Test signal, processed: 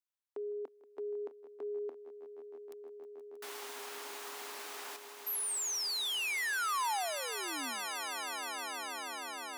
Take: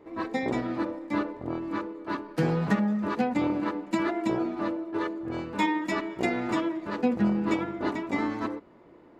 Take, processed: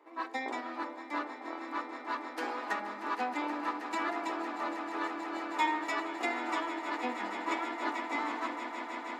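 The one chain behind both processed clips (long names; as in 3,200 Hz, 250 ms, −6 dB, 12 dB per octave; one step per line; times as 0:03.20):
elliptic high-pass filter 260 Hz, stop band 40 dB
low shelf with overshoot 650 Hz −8 dB, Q 1.5
echo that builds up and dies away 158 ms, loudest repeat 8, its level −14 dB
level −2.5 dB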